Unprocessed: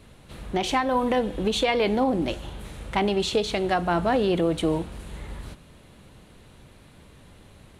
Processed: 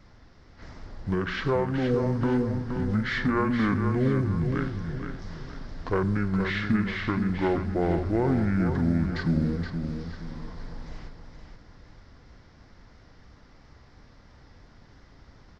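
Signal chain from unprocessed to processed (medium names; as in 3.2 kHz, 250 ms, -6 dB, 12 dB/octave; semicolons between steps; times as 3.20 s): short-mantissa float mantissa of 6-bit; vibrato 5.9 Hz 24 cents; speed mistake 15 ips tape played at 7.5 ips; feedback delay 471 ms, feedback 37%, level -7 dB; trim -2.5 dB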